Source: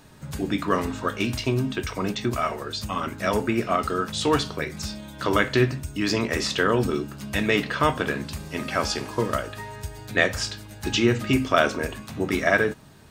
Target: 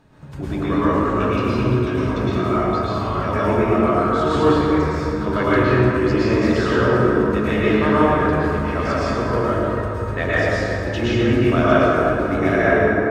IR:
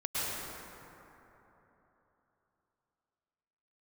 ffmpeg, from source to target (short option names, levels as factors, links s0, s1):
-filter_complex "[0:a]lowpass=f=1500:p=1[s0];[1:a]atrim=start_sample=2205[s1];[s0][s1]afir=irnorm=-1:irlink=0"